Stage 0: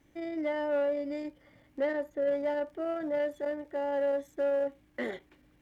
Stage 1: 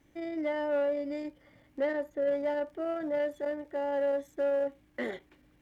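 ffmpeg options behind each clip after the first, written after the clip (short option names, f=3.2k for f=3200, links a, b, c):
-af anull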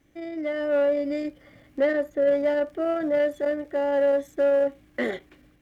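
-af "bandreject=f=910:w=7.1,dynaudnorm=f=420:g=3:m=6.5dB,volume=1.5dB"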